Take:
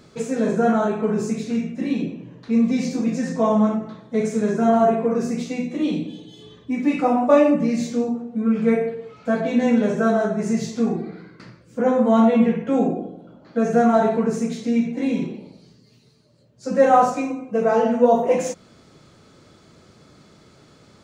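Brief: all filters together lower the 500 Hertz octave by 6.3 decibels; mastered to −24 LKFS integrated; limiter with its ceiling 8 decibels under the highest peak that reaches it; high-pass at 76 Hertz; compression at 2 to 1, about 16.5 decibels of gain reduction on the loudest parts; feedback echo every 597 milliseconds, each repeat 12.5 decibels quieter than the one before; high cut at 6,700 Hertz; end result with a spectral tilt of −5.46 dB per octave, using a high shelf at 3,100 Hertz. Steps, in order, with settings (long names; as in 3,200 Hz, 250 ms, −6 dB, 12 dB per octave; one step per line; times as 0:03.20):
high-pass filter 76 Hz
low-pass filter 6,700 Hz
parametric band 500 Hz −8 dB
high-shelf EQ 3,100 Hz +4.5 dB
downward compressor 2 to 1, threshold −45 dBFS
brickwall limiter −31.5 dBFS
repeating echo 597 ms, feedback 24%, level −12.5 dB
level +16 dB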